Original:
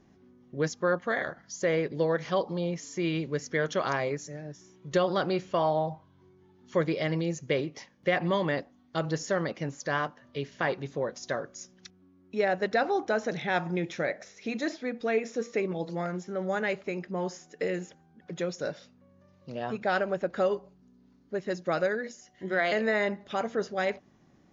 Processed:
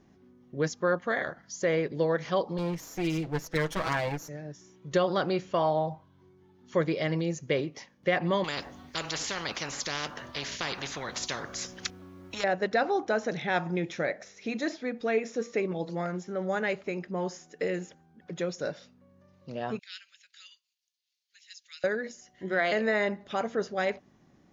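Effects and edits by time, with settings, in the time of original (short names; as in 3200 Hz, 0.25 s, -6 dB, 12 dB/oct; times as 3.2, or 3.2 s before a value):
2.58–4.29 minimum comb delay 6.2 ms
8.44–12.44 spectral compressor 4:1
19.79–21.84 inverse Chebyshev high-pass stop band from 810 Hz, stop band 60 dB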